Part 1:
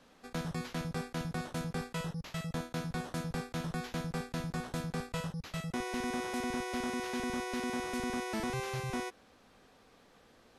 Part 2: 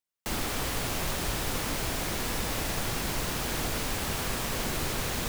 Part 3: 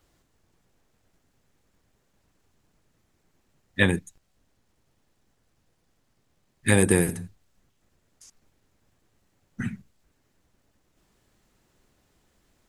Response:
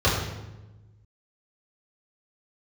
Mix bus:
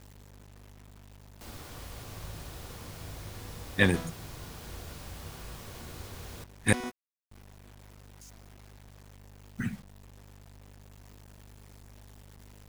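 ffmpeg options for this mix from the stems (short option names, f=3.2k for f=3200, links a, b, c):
-filter_complex "[0:a]alimiter=level_in=5.5dB:limit=-24dB:level=0:latency=1:release=289,volume=-5.5dB,volume=2.5dB[a];[1:a]adelay=1150,volume=-16.5dB,asplit=2[b][c];[c]volume=-23dB[d];[2:a]aeval=exprs='val(0)+0.00316*(sin(2*PI*50*n/s)+sin(2*PI*2*50*n/s)/2+sin(2*PI*3*50*n/s)/3+sin(2*PI*4*50*n/s)/4+sin(2*PI*5*50*n/s)/5)':c=same,volume=-2.5dB,asplit=3[e][f][g];[e]atrim=end=6.73,asetpts=PTS-STARTPTS,afade=t=out:st=6.726:d=0.004:c=hsin[h];[f]atrim=start=6.73:end=7.31,asetpts=PTS-STARTPTS,volume=0[i];[g]atrim=start=7.31,asetpts=PTS-STARTPTS,afade=t=in:d=0.004:c=hsin[j];[h][i][j]concat=n=3:v=0:a=1,asplit=2[k][l];[l]apad=whole_len=466695[m];[a][m]sidechaingate=range=-33dB:threshold=-42dB:ratio=16:detection=peak[n];[3:a]atrim=start_sample=2205[o];[d][o]afir=irnorm=-1:irlink=0[p];[n][b][k][p]amix=inputs=4:normalize=0,acrusher=bits=8:mix=0:aa=0.000001"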